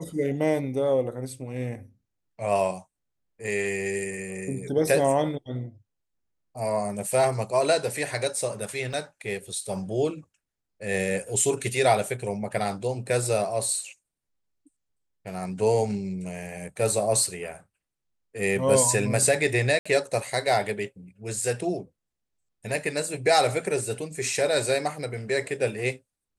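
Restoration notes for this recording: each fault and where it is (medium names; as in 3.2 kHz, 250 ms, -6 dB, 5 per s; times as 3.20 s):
8.93 s: dropout 4.6 ms
19.79–19.86 s: dropout 65 ms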